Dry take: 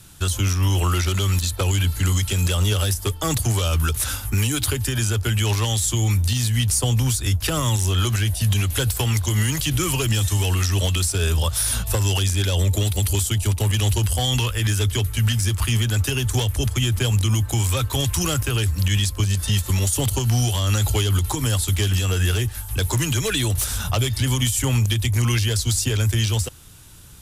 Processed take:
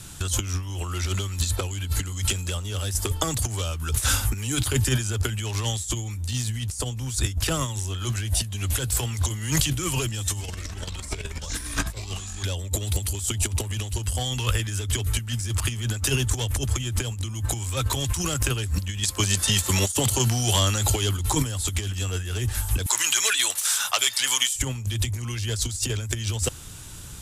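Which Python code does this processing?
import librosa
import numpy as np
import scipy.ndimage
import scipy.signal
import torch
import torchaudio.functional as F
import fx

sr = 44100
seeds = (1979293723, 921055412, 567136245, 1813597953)

y = fx.echo_pitch(x, sr, ms=94, semitones=-6, count=3, db_per_echo=-3.0, at=(10.31, 12.43))
y = fx.highpass(y, sr, hz=fx.line((19.02, 400.0), (21.16, 120.0)), slope=6, at=(19.02, 21.16), fade=0.02)
y = fx.highpass(y, sr, hz=1100.0, slope=12, at=(22.86, 24.56))
y = fx.peak_eq(y, sr, hz=7500.0, db=5.5, octaves=0.6)
y = fx.over_compress(y, sr, threshold_db=-24.0, ratio=-0.5)
y = fx.high_shelf(y, sr, hz=11000.0, db=-7.5)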